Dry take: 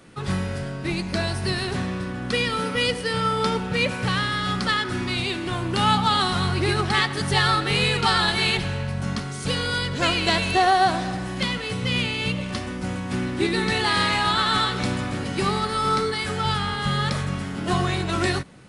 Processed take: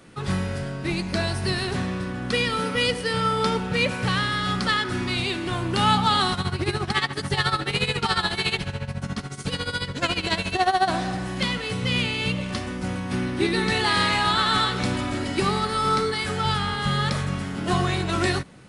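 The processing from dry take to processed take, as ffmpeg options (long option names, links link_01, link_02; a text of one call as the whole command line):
ffmpeg -i in.wav -filter_complex "[0:a]asettb=1/sr,asplit=3[link_01][link_02][link_03];[link_01]atrim=end=6.334[link_04];[link_02]atrim=start=6.33:end=10.88,asetpts=PTS-STARTPTS,afade=type=in:duration=0.004:curve=qsin,afade=type=out:start_time=4.546:duration=0.004:curve=qsin,tremolo=f=14:d=0.79[link_05];[link_03]atrim=start=10.876[link_06];[link_04][link_05]acrossfade=duration=0.004:curve1=hsin:curve2=qsin[link_07];[link_07][link_06]acrossfade=duration=0.004:curve1=qsin:curve2=hsin,asettb=1/sr,asplit=3[link_08][link_09][link_10];[link_08]atrim=end=12.884[link_11];[link_09]atrim=start=12.88:end=13.65,asetpts=PTS-STARTPTS,afade=type=in:duration=0.004:curve=qsin,afade=type=out:start_time=0.766:duration=0.004:curve=qsin,bandreject=frequency=7300:width=7.8[link_12];[link_10]atrim=start=13.646[link_13];[link_11][link_12]acrossfade=duration=0.004:curve1=hsin:curve2=qsin[link_14];[link_14][link_13]acrossfade=duration=0.004:curve1=qsin:curve2=hsin,asettb=1/sr,asplit=3[link_15][link_16][link_17];[link_15]atrim=end=14.944[link_18];[link_16]atrim=start=14.94:end=15.4,asetpts=PTS-STARTPTS,afade=type=in:duration=0.004:curve=qsin,afade=type=out:start_time=0.456:duration=0.004:curve=qsin,aecho=1:1:3.1:0.64,atrim=end_sample=20286[link_19];[link_17]atrim=start=15.396[link_20];[link_18][link_19]acrossfade=duration=0.004:curve1=hsin:curve2=qsin[link_21];[link_21][link_20]acrossfade=duration=0.004:curve1=qsin:curve2=hsin" out.wav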